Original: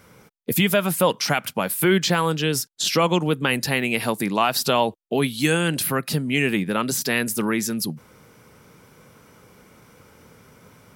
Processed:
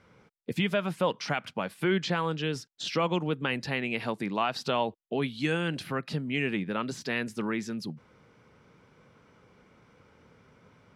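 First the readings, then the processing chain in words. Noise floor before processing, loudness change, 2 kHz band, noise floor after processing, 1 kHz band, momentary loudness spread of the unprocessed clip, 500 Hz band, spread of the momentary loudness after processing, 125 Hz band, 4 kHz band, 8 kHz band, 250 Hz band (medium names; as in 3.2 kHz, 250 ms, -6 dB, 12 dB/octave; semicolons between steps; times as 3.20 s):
-54 dBFS, -9.0 dB, -8.5 dB, -64 dBFS, -8.0 dB, 5 LU, -8.0 dB, 6 LU, -8.0 dB, -10.5 dB, -20.0 dB, -8.0 dB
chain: low-pass 4 kHz 12 dB/octave; trim -8 dB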